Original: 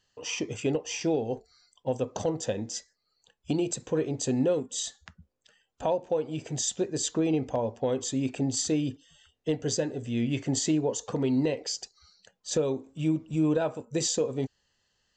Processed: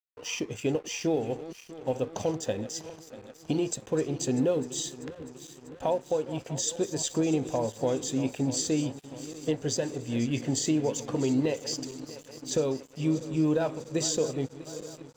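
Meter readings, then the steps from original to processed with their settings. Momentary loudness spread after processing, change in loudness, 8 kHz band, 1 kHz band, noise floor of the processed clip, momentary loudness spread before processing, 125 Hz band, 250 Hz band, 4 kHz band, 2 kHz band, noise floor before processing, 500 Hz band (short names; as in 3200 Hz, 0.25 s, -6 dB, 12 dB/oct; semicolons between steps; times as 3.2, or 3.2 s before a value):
14 LU, 0.0 dB, -0.5 dB, 0.0 dB, -52 dBFS, 9 LU, -0.5 dB, 0.0 dB, -0.5 dB, 0.0 dB, -77 dBFS, 0.0 dB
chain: regenerating reverse delay 0.322 s, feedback 77%, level -14 dB; crossover distortion -50.5 dBFS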